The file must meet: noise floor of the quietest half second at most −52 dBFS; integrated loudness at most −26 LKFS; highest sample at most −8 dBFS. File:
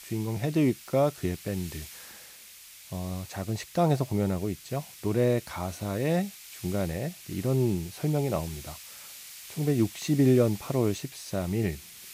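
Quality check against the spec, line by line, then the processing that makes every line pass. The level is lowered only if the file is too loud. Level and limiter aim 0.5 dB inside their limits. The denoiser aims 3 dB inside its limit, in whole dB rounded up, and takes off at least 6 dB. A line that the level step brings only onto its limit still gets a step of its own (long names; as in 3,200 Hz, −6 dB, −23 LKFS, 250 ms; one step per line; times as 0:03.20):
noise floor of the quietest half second −49 dBFS: out of spec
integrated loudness −29.0 LKFS: in spec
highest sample −11.0 dBFS: in spec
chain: broadband denoise 6 dB, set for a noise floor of −49 dBFS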